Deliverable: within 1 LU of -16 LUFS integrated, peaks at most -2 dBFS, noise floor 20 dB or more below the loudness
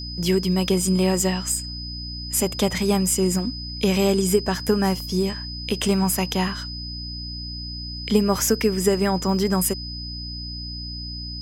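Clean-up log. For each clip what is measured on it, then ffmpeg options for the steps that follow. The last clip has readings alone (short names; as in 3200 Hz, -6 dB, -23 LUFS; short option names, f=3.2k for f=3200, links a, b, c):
hum 60 Hz; harmonics up to 300 Hz; hum level -32 dBFS; steady tone 5000 Hz; tone level -33 dBFS; loudness -23.0 LUFS; peak -6.0 dBFS; loudness target -16.0 LUFS
-> -af "bandreject=f=60:t=h:w=6,bandreject=f=120:t=h:w=6,bandreject=f=180:t=h:w=6,bandreject=f=240:t=h:w=6,bandreject=f=300:t=h:w=6"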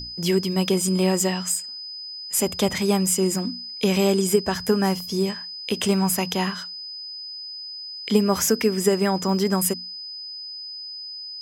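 hum none; steady tone 5000 Hz; tone level -33 dBFS
-> -af "bandreject=f=5k:w=30"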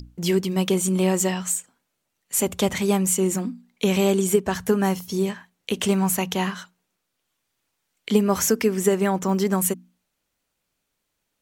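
steady tone none; loudness -22.5 LUFS; peak -6.5 dBFS; loudness target -16.0 LUFS
-> -af "volume=6.5dB,alimiter=limit=-2dB:level=0:latency=1"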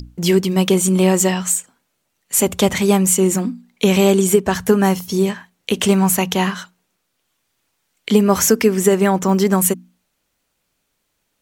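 loudness -16.5 LUFS; peak -2.0 dBFS; noise floor -71 dBFS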